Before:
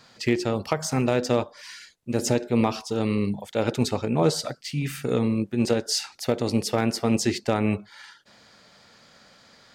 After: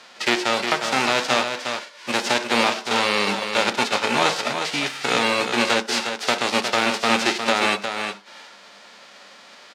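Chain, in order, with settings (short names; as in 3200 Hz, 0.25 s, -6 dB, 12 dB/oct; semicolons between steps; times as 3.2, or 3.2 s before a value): spectral whitening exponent 0.3; in parallel at +1 dB: compressor, threshold -30 dBFS, peak gain reduction 14.5 dB; on the sum: soft clip -8 dBFS, distortion -17 dB; BPF 360–4200 Hz; echo 0.358 s -7 dB; on a send at -12.5 dB: reverb RT60 0.35 s, pre-delay 3 ms; on the sum: gain +4 dB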